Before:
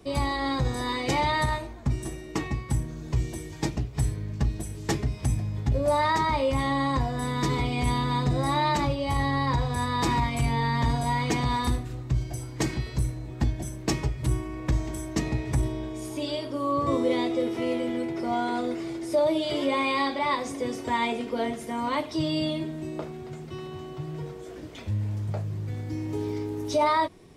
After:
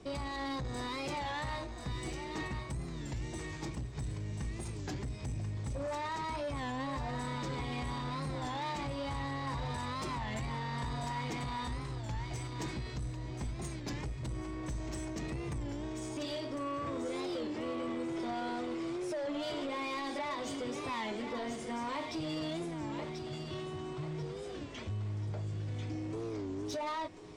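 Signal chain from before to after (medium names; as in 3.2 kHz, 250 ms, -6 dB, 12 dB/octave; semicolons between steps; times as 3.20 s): steep low-pass 8.8 kHz 48 dB/octave; in parallel at +1.5 dB: compression, threshold -33 dBFS, peak gain reduction 13 dB; on the sum: peak limiter -18 dBFS, peak gain reduction 7 dB; saturation -24.5 dBFS, distortion -14 dB; thinning echo 1038 ms, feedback 42%, high-pass 950 Hz, level -5 dB; warped record 33 1/3 rpm, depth 160 cents; trim -8.5 dB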